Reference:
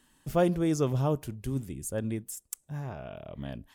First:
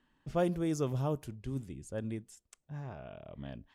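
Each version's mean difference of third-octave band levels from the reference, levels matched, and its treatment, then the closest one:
1.0 dB: low-pass that shuts in the quiet parts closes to 2,700 Hz, open at −25 dBFS
level −5.5 dB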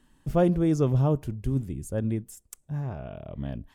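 4.0 dB: spectral tilt −2 dB per octave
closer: first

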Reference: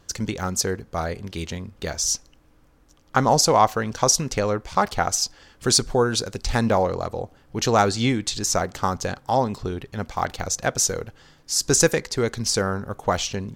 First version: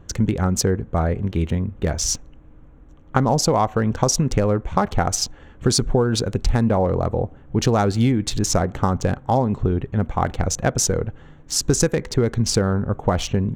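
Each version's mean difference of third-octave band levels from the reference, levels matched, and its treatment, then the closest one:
5.5 dB: adaptive Wiener filter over 9 samples
low-shelf EQ 420 Hz +10.5 dB
downward compressor, threshold −16 dBFS, peak gain reduction 9.5 dB
level +2 dB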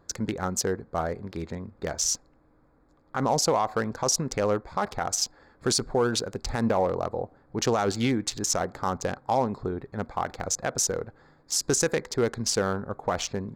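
3.5 dB: adaptive Wiener filter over 15 samples
low-shelf EQ 120 Hz −9 dB
brickwall limiter −14 dBFS, peak gain reduction 11 dB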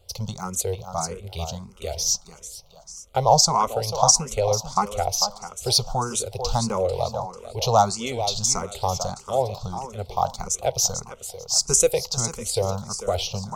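7.5 dB: phaser with its sweep stopped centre 710 Hz, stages 4
on a send: feedback echo with a high-pass in the loop 444 ms, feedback 36%, high-pass 170 Hz, level −9.5 dB
on the sum: frequency shifter mixed with the dry sound +1.6 Hz
level +4 dB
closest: second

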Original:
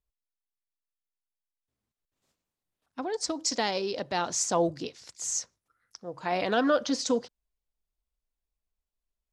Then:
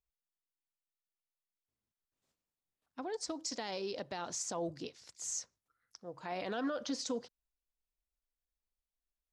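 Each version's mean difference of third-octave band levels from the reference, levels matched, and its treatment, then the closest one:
2.0 dB: brickwall limiter −21 dBFS, peak gain reduction 8 dB
level −7.5 dB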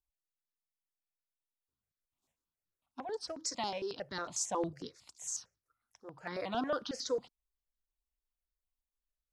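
4.0 dB: step-sequenced phaser 11 Hz 510–2,600 Hz
level −5.5 dB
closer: first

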